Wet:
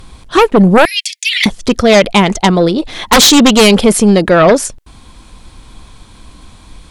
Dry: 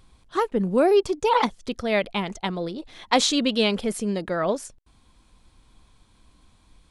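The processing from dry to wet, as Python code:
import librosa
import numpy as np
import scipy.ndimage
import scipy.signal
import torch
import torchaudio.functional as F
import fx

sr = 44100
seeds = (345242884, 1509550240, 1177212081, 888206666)

y = fx.steep_highpass(x, sr, hz=1900.0, slope=72, at=(0.85, 1.46))
y = fx.fold_sine(y, sr, drive_db=17, ceiling_db=-1.0)
y = F.gain(torch.from_numpy(y), -1.0).numpy()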